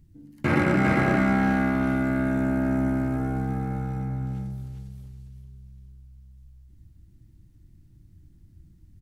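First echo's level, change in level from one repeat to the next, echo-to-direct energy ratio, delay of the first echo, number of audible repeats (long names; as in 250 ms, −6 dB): −3.0 dB, −15.0 dB, −3.0 dB, 400 ms, 3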